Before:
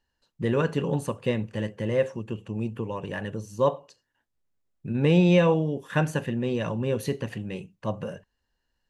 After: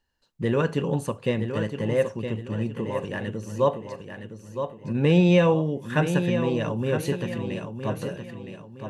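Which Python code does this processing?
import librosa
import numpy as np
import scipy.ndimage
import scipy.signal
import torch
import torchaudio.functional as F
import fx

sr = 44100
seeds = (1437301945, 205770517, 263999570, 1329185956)

y = fx.echo_feedback(x, sr, ms=965, feedback_pct=36, wet_db=-8.0)
y = y * 10.0 ** (1.0 / 20.0)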